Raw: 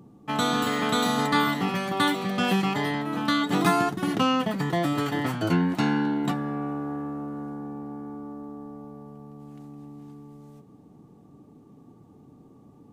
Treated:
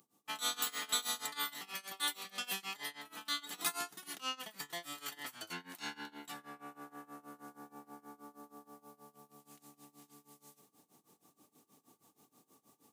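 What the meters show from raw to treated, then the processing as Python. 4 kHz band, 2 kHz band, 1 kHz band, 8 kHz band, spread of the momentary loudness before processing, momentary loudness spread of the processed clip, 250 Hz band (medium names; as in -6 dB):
-7.5 dB, -13.5 dB, -18.0 dB, -1.0 dB, 21 LU, 23 LU, -29.0 dB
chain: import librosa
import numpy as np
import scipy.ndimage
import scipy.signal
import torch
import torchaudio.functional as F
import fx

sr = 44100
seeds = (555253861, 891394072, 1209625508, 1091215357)

y = x * (1.0 - 0.92 / 2.0 + 0.92 / 2.0 * np.cos(2.0 * np.pi * 6.3 * (np.arange(len(x)) / sr)))
y = fx.rider(y, sr, range_db=10, speed_s=2.0)
y = np.diff(y, prepend=0.0)
y = F.gain(torch.from_numpy(y), 2.5).numpy()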